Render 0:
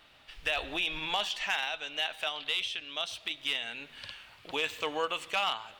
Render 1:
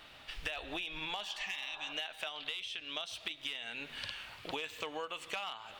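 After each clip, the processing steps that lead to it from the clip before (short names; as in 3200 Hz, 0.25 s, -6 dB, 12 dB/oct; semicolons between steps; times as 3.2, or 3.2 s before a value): spectral repair 1.31–1.9, 390–1700 Hz before; compressor 10:1, threshold -41 dBFS, peak gain reduction 16 dB; gain +4.5 dB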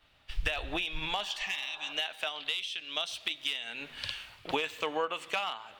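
three-band expander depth 100%; gain +6 dB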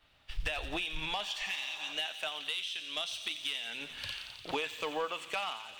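on a send: thin delay 88 ms, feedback 80%, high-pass 3600 Hz, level -7 dB; on the sum: soft clip -23 dBFS, distortion -17 dB; gain -1.5 dB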